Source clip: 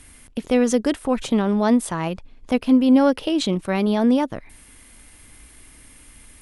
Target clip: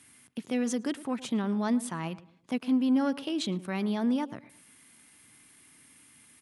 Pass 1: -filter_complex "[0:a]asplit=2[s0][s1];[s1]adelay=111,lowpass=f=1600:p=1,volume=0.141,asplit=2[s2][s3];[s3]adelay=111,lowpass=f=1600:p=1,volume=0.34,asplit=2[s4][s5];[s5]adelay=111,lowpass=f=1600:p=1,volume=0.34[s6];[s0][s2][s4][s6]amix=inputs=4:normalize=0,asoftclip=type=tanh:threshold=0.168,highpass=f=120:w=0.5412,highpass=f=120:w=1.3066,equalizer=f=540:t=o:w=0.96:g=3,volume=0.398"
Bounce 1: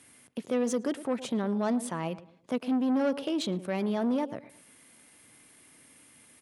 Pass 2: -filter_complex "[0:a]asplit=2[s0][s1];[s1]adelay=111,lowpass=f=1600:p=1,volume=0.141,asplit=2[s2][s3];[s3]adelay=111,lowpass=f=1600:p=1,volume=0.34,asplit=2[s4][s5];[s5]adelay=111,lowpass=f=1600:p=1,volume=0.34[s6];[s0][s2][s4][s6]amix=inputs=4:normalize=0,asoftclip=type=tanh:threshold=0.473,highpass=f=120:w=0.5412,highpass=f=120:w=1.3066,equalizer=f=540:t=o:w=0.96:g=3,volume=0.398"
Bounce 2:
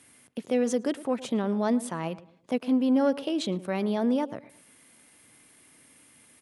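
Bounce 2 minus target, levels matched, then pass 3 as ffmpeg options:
500 Hz band +5.5 dB
-filter_complex "[0:a]asplit=2[s0][s1];[s1]adelay=111,lowpass=f=1600:p=1,volume=0.141,asplit=2[s2][s3];[s3]adelay=111,lowpass=f=1600:p=1,volume=0.34,asplit=2[s4][s5];[s5]adelay=111,lowpass=f=1600:p=1,volume=0.34[s6];[s0][s2][s4][s6]amix=inputs=4:normalize=0,asoftclip=type=tanh:threshold=0.473,highpass=f=120:w=0.5412,highpass=f=120:w=1.3066,equalizer=f=540:t=o:w=0.96:g=-6.5,volume=0.398"

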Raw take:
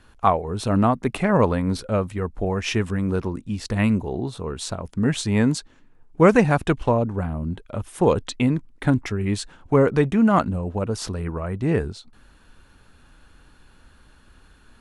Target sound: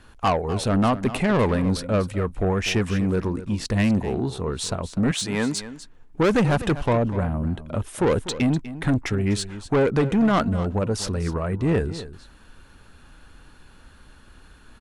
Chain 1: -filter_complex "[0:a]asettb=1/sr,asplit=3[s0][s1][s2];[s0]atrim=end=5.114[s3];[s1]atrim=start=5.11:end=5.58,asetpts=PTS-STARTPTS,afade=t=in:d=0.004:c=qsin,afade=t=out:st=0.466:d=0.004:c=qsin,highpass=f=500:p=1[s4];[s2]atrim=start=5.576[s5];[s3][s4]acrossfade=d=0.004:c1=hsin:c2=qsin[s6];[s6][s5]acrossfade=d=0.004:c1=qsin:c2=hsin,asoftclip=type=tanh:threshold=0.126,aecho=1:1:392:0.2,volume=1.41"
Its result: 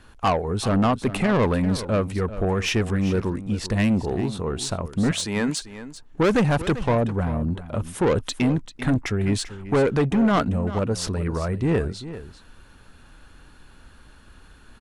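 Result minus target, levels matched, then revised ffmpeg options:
echo 145 ms late
-filter_complex "[0:a]asettb=1/sr,asplit=3[s0][s1][s2];[s0]atrim=end=5.114[s3];[s1]atrim=start=5.11:end=5.58,asetpts=PTS-STARTPTS,afade=t=in:d=0.004:c=qsin,afade=t=out:st=0.466:d=0.004:c=qsin,highpass=f=500:p=1[s4];[s2]atrim=start=5.576[s5];[s3][s4]acrossfade=d=0.004:c1=hsin:c2=qsin[s6];[s6][s5]acrossfade=d=0.004:c1=qsin:c2=hsin,asoftclip=type=tanh:threshold=0.126,aecho=1:1:247:0.2,volume=1.41"

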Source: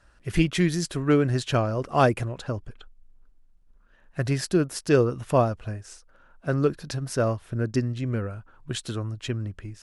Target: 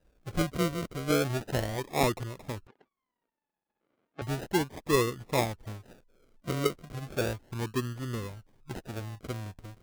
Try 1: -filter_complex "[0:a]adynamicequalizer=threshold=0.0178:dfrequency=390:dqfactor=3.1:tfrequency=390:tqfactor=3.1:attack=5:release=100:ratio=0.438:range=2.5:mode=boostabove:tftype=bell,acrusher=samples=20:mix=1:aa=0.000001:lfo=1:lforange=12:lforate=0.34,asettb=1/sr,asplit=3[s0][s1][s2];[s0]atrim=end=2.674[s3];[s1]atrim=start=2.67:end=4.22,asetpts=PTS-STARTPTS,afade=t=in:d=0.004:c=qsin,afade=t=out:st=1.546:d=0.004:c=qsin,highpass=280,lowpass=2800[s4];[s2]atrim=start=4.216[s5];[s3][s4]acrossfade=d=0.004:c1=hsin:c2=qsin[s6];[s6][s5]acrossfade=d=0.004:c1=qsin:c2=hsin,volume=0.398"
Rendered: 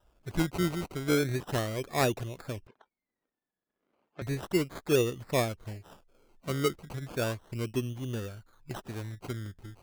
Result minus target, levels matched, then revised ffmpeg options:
decimation with a swept rate: distortion -8 dB
-filter_complex "[0:a]adynamicequalizer=threshold=0.0178:dfrequency=390:dqfactor=3.1:tfrequency=390:tqfactor=3.1:attack=5:release=100:ratio=0.438:range=2.5:mode=boostabove:tftype=bell,acrusher=samples=40:mix=1:aa=0.000001:lfo=1:lforange=24:lforate=0.34,asettb=1/sr,asplit=3[s0][s1][s2];[s0]atrim=end=2.674[s3];[s1]atrim=start=2.67:end=4.22,asetpts=PTS-STARTPTS,afade=t=in:d=0.004:c=qsin,afade=t=out:st=1.546:d=0.004:c=qsin,highpass=280,lowpass=2800[s4];[s2]atrim=start=4.216[s5];[s3][s4]acrossfade=d=0.004:c1=hsin:c2=qsin[s6];[s6][s5]acrossfade=d=0.004:c1=qsin:c2=hsin,volume=0.398"

